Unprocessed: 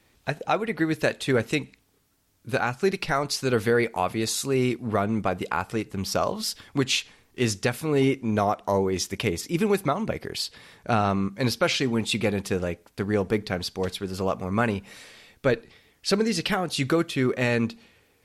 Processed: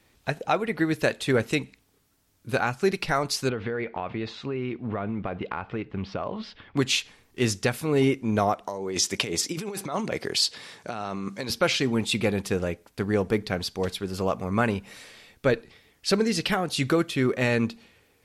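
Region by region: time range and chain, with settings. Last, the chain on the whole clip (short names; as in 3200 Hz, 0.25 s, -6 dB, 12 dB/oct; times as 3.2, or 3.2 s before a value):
3.49–6.77 block floating point 7-bit + LPF 3200 Hz 24 dB/oct + compressor 10:1, threshold -25 dBFS
8.67–11.5 negative-ratio compressor -29 dBFS + BPF 110–8000 Hz + tone controls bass -4 dB, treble +7 dB
whole clip: dry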